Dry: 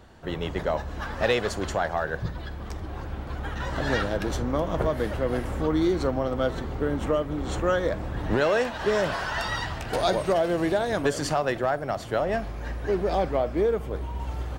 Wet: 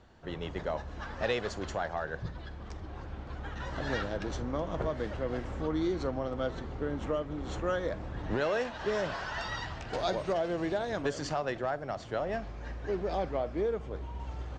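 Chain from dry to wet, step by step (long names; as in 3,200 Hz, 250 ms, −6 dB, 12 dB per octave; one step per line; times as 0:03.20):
Butterworth low-pass 7,200 Hz 36 dB per octave
level −7.5 dB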